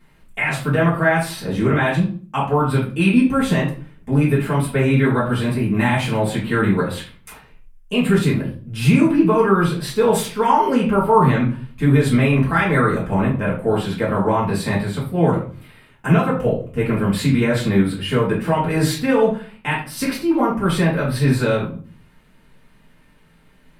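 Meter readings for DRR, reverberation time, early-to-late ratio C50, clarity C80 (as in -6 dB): -7.0 dB, 0.40 s, 6.5 dB, 12.0 dB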